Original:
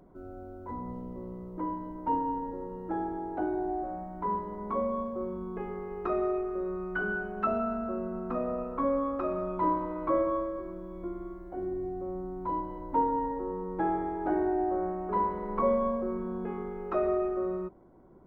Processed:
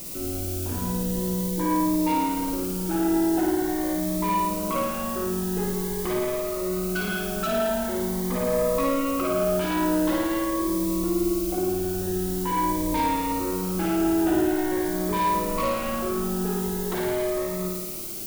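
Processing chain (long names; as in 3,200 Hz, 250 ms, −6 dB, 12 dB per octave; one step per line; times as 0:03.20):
in parallel at 0 dB: downward compressor, threshold −38 dBFS, peak gain reduction 15 dB
on the sum: background noise blue −43 dBFS
gain into a clipping stage and back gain 29 dB
flutter between parallel walls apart 9.4 metres, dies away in 1.1 s
phaser whose notches keep moving one way rising 0.45 Hz
level +5 dB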